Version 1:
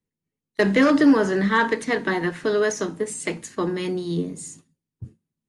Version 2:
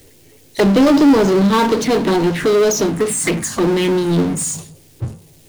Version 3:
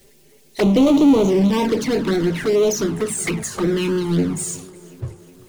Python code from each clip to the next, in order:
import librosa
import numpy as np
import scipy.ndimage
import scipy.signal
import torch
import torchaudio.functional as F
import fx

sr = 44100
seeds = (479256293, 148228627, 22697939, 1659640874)

y1 = fx.env_phaser(x, sr, low_hz=190.0, high_hz=1900.0, full_db=-20.5)
y1 = fx.power_curve(y1, sr, exponent=0.5)
y1 = y1 * librosa.db_to_amplitude(3.0)
y2 = fx.env_flanger(y1, sr, rest_ms=5.3, full_db=-10.0)
y2 = fx.echo_tape(y2, sr, ms=366, feedback_pct=73, wet_db=-20, lp_hz=4400.0, drive_db=6.0, wow_cents=34)
y2 = y2 * librosa.db_to_amplitude(-2.0)